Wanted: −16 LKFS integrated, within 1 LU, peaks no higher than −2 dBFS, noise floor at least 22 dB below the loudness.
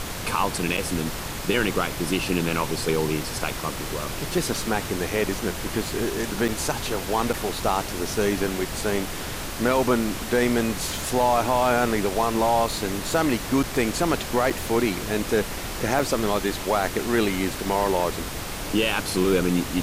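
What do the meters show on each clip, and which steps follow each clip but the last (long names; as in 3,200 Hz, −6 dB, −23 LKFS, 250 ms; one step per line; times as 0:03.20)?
number of dropouts 6; longest dropout 5.7 ms; background noise floor −32 dBFS; target noise floor −47 dBFS; integrated loudness −24.5 LKFS; sample peak −8.5 dBFS; target loudness −16.0 LKFS
→ repair the gap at 0:00.77/0:06.48/0:07.33/0:13.63/0:14.50/0:15.99, 5.7 ms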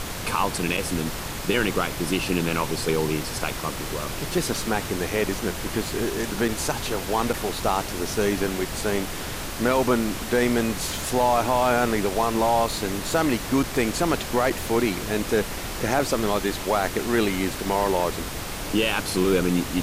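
number of dropouts 0; background noise floor −32 dBFS; target noise floor −47 dBFS
→ noise reduction from a noise print 15 dB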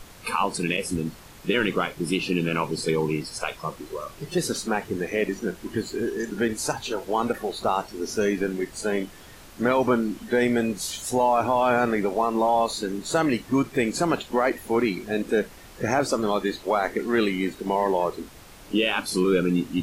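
background noise floor −46 dBFS; target noise floor −47 dBFS
→ noise reduction from a noise print 6 dB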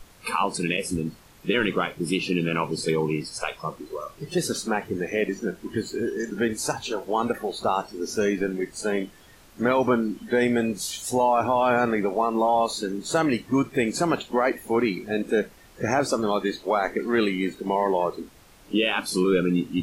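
background noise floor −52 dBFS; integrated loudness −25.0 LKFS; sample peak −10.0 dBFS; target loudness −16.0 LKFS
→ level +9 dB
brickwall limiter −2 dBFS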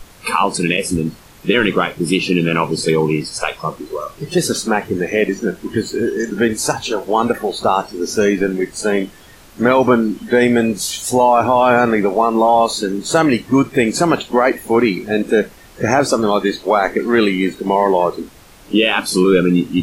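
integrated loudness −16.5 LKFS; sample peak −2.0 dBFS; background noise floor −43 dBFS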